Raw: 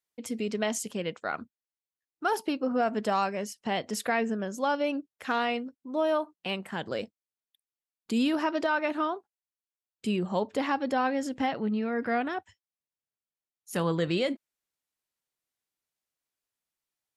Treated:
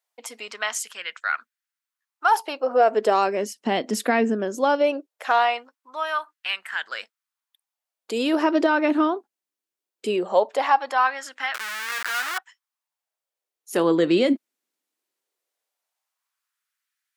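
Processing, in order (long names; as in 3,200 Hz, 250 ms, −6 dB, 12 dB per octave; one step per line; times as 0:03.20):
0:11.54–0:12.38: comparator with hysteresis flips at −35 dBFS
auto-filter high-pass sine 0.19 Hz 260–1,600 Hz
level +5 dB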